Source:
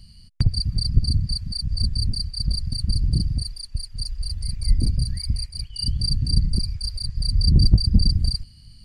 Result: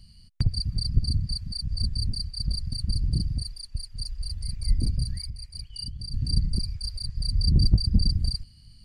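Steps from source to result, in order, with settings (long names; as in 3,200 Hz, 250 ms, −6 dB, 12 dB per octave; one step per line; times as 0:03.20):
0:05.21–0:06.14: downward compressor 12 to 1, threshold −27 dBFS, peak gain reduction 11 dB
level −4.5 dB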